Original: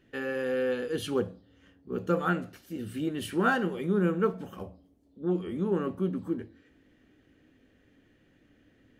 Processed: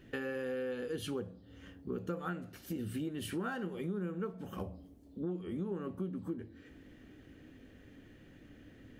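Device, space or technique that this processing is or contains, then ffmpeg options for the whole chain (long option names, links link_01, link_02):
ASMR close-microphone chain: -af "lowshelf=frequency=230:gain=5,acompressor=threshold=-41dB:ratio=6,highshelf=frequency=11000:gain=4,volume=4.5dB"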